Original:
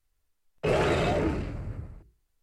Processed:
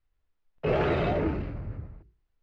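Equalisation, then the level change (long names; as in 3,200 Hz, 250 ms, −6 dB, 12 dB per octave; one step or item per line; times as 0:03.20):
high-frequency loss of the air 260 metres
high-shelf EQ 8,900 Hz +3.5 dB
0.0 dB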